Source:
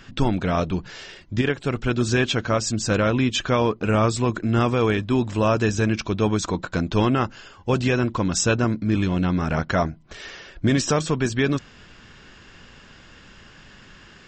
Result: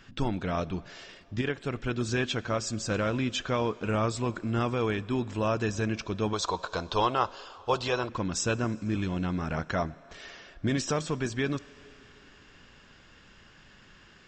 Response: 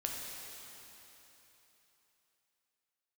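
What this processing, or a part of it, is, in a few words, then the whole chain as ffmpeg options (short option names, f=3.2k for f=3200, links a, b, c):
filtered reverb send: -filter_complex "[0:a]asplit=2[a][b];[b]highpass=280,lowpass=7.3k[c];[1:a]atrim=start_sample=2205[d];[c][d]afir=irnorm=-1:irlink=0,volume=-18dB[e];[a][e]amix=inputs=2:normalize=0,asettb=1/sr,asplit=3[f][g][h];[f]atrim=end=6.334[i];[g]atrim=start=6.33:end=8.09,asetpts=PTS-STARTPTS,afade=t=in:d=0.004:c=qsin,afade=t=out:st=1.756:d=0.004:c=qsin,equalizer=f=125:t=o:w=1:g=-5,equalizer=f=250:t=o:w=1:g=-10,equalizer=f=500:t=o:w=1:g=5,equalizer=f=1k:t=o:w=1:g=10,equalizer=f=2k:t=o:w=1:g=-6,equalizer=f=4k:t=o:w=1:g=10[j];[h]atrim=start=8.086[k];[i][j]acrossfade=d=0.004:c1=hsin:c2=qsin[l];[l][k]acrossfade=d=0.004:c1=qsin:c2=hsin,volume=-8.5dB"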